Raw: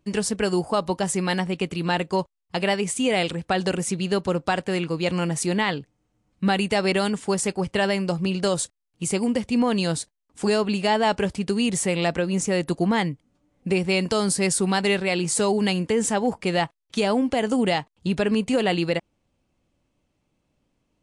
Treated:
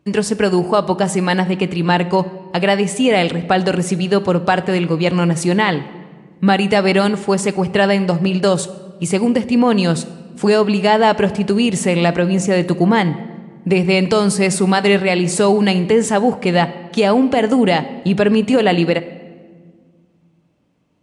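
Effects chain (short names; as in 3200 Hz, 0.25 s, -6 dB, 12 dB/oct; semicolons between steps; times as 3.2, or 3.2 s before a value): HPF 84 Hz; high shelf 4200 Hz -8.5 dB; shoebox room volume 1900 m³, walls mixed, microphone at 0.42 m; gain +8.5 dB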